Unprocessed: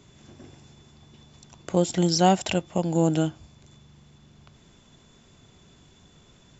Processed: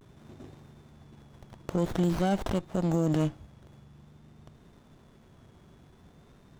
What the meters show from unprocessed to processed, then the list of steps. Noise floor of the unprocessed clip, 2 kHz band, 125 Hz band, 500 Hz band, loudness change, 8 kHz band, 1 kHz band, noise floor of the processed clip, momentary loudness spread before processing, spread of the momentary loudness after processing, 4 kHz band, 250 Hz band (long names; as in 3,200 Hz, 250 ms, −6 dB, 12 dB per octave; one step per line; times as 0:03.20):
−56 dBFS, −6.0 dB, −3.0 dB, −6.0 dB, −5.0 dB, can't be measured, −10.0 dB, −57 dBFS, 7 LU, 6 LU, −13.5 dB, −4.0 dB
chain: brickwall limiter −17.5 dBFS, peak gain reduction 11 dB
pitch vibrato 0.5 Hz 61 cents
windowed peak hold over 17 samples